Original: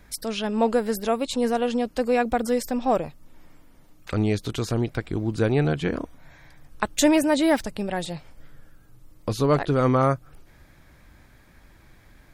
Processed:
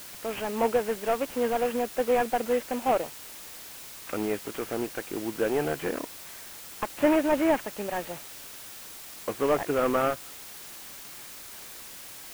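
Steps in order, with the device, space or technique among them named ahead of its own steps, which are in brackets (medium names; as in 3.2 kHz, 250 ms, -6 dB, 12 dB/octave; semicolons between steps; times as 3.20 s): army field radio (band-pass 340–3100 Hz; CVSD coder 16 kbps; white noise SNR 14 dB)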